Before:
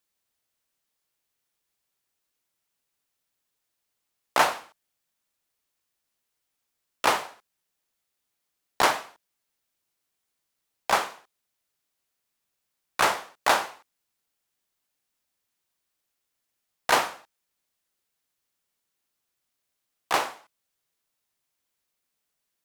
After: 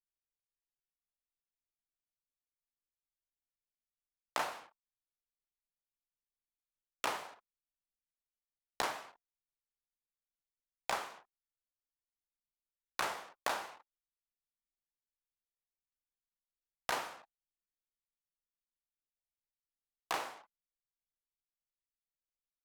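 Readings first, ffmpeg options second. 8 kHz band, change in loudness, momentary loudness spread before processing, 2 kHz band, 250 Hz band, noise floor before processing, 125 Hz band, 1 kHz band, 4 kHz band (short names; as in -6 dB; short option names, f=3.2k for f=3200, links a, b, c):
-13.0 dB, -14.0 dB, 14 LU, -13.5 dB, -14.0 dB, -81 dBFS, -13.5 dB, -14.0 dB, -13.0 dB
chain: -af "acompressor=threshold=-35dB:ratio=4,flanger=delay=6.1:depth=2.7:regen=-86:speed=0.25:shape=triangular,anlmdn=0.0000251,volume=4dB"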